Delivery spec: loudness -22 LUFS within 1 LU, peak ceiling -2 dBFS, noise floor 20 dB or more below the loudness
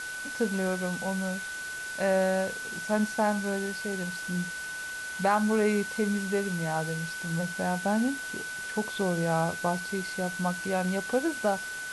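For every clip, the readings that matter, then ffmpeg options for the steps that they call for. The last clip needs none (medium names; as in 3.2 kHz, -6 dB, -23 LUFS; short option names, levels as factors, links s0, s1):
steady tone 1.5 kHz; tone level -35 dBFS; noise floor -37 dBFS; noise floor target -50 dBFS; loudness -29.5 LUFS; peak level -13.5 dBFS; loudness target -22.0 LUFS
-> -af "bandreject=f=1500:w=30"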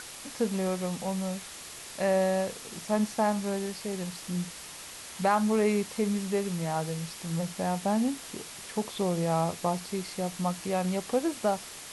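steady tone not found; noise floor -44 dBFS; noise floor target -51 dBFS
-> -af "afftdn=nr=7:nf=-44"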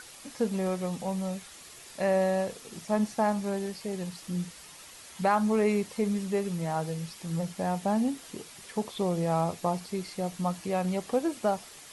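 noise floor -49 dBFS; noise floor target -51 dBFS
-> -af "afftdn=nr=6:nf=-49"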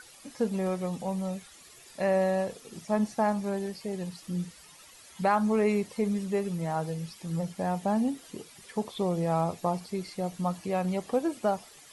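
noise floor -53 dBFS; loudness -30.5 LUFS; peak level -14.0 dBFS; loudness target -22.0 LUFS
-> -af "volume=2.66"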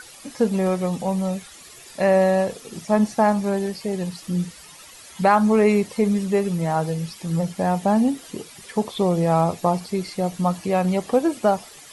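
loudness -22.0 LUFS; peak level -5.5 dBFS; noise floor -44 dBFS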